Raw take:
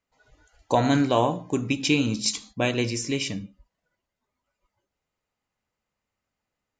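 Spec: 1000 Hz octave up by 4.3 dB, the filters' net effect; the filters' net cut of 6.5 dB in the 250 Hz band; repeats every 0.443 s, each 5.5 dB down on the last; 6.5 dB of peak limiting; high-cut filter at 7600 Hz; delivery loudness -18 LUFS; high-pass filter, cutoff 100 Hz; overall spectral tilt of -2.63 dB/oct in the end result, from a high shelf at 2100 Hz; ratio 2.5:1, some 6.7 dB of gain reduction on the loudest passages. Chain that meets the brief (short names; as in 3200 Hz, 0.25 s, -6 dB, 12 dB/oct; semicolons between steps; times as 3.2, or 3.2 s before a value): HPF 100 Hz; LPF 7600 Hz; bell 250 Hz -8 dB; bell 1000 Hz +4.5 dB; high shelf 2100 Hz +8 dB; compressor 2.5:1, threshold -24 dBFS; limiter -16 dBFS; feedback echo 0.443 s, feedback 53%, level -5.5 dB; gain +11 dB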